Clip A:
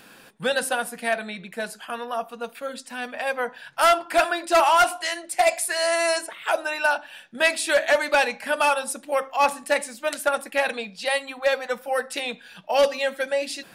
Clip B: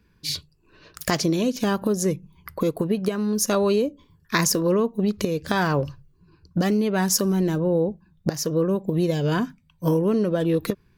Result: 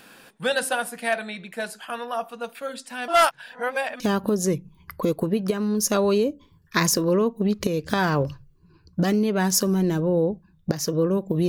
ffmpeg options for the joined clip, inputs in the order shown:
ffmpeg -i cue0.wav -i cue1.wav -filter_complex "[0:a]apad=whole_dur=11.48,atrim=end=11.48,asplit=2[link_01][link_02];[link_01]atrim=end=3.082[link_03];[link_02]atrim=start=3.078:end=4.002,asetpts=PTS-STARTPTS,areverse[link_04];[1:a]atrim=start=1.578:end=9.06[link_05];[link_03][link_04]acrossfade=duration=0.004:curve1=hsin:curve2=hsin[link_06];[link_06][link_05]acrossfade=duration=0.004:curve1=hsin:curve2=hsin" out.wav

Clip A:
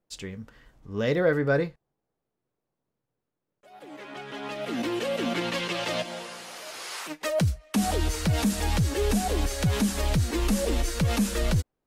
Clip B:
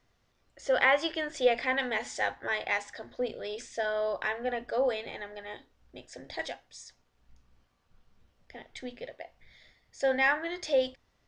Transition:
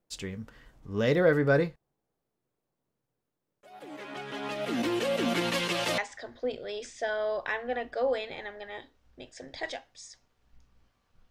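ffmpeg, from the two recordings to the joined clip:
ffmpeg -i cue0.wav -i cue1.wav -filter_complex "[0:a]asettb=1/sr,asplit=3[link_01][link_02][link_03];[link_01]atrim=end=5.284[link_04];[link_02]atrim=start=5.28:end=5.98,asetpts=PTS-STARTPTS,afade=type=in:duration=0.004:curve=qsin,afade=type=out:start_time=0.696:duration=0.004:curve=qsin,equalizer=frequency=12000:width_type=o:width=1.1:gain=5.5[link_05];[link_03]atrim=start=5.976[link_06];[link_04][link_05]acrossfade=duration=0.004:curve1=hsin:curve2=qsin[link_07];[link_07][link_06]acrossfade=duration=0.004:curve1=qsin:curve2=hsin,apad=whole_dur=11.3,atrim=end=11.3,atrim=end=5.982[link_08];[1:a]atrim=start=2.738:end=8.06[link_09];[link_08][link_09]acrossfade=duration=0.004:curve1=hsin:curve2=hsin" out.wav

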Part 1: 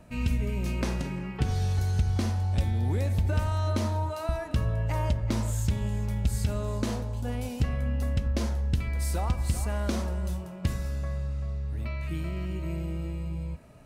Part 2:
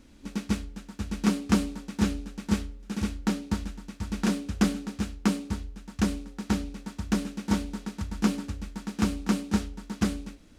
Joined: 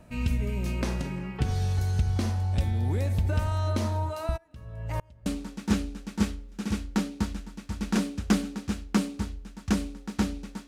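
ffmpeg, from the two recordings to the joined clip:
ffmpeg -i cue0.wav -i cue1.wav -filter_complex "[0:a]asplit=3[link_01][link_02][link_03];[link_01]afade=type=out:start_time=4.36:duration=0.02[link_04];[link_02]aeval=exprs='val(0)*pow(10,-32*if(lt(mod(-1.4*n/s,1),2*abs(-1.4)/1000),1-mod(-1.4*n/s,1)/(2*abs(-1.4)/1000),(mod(-1.4*n/s,1)-2*abs(-1.4)/1000)/(1-2*abs(-1.4)/1000))/20)':channel_layout=same,afade=type=in:start_time=4.36:duration=0.02,afade=type=out:start_time=5.26:duration=0.02[link_05];[link_03]afade=type=in:start_time=5.26:duration=0.02[link_06];[link_04][link_05][link_06]amix=inputs=3:normalize=0,apad=whole_dur=10.67,atrim=end=10.67,atrim=end=5.262[link_07];[1:a]atrim=start=1.568:end=6.98[link_08];[link_07][link_08]acrossfade=duration=0.004:curve1=hsin:curve2=hsin" out.wav

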